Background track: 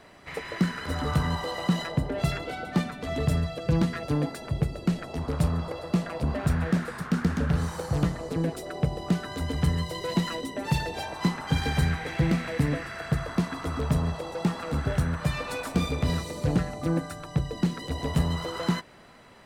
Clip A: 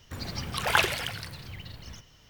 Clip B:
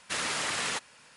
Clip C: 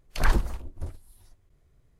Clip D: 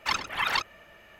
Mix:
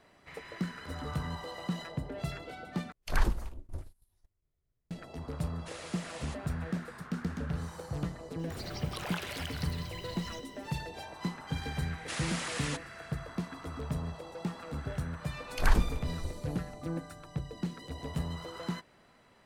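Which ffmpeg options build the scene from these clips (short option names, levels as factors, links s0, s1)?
-filter_complex "[3:a]asplit=2[s0][s1];[2:a]asplit=2[s2][s3];[0:a]volume=0.316[s4];[s0]agate=range=0.2:threshold=0.00355:ratio=16:release=100:detection=peak[s5];[1:a]acompressor=threshold=0.0126:ratio=5:attack=11:release=101:knee=1:detection=peak[s6];[s4]asplit=2[s7][s8];[s7]atrim=end=2.924[s9];[s5]atrim=end=1.99,asetpts=PTS-STARTPTS,volume=0.531[s10];[s8]atrim=start=4.906[s11];[s2]atrim=end=1.16,asetpts=PTS-STARTPTS,volume=0.168,afade=t=in:d=0.004:c=hsin,afade=t=out:st=1.156:d=0.004:c=hsin,adelay=5560[s12];[s6]atrim=end=2.29,asetpts=PTS-STARTPTS,volume=0.841,afade=t=in:d=0.004:c=hsin,afade=t=out:st=2.286:d=0.004:c=hsin,adelay=8390[s13];[s3]atrim=end=1.16,asetpts=PTS-STARTPTS,volume=0.473,afade=t=in:d=0.004:c=hsin,afade=t=out:st=1.156:d=0.004:c=hsin,adelay=11980[s14];[s1]atrim=end=1.99,asetpts=PTS-STARTPTS,volume=0.708,afade=t=in:d=0.004:c=hsin,afade=t=out:st=1.986:d=0.004:c=hsin,adelay=15420[s15];[s9][s10]acrossfade=d=0.004:c1=hsin:c2=hsin[s16];[s16][s11]acrossfade=d=0.004:c1=hsin:c2=hsin[s17];[s17][s12][s13][s14][s15]amix=inputs=5:normalize=0"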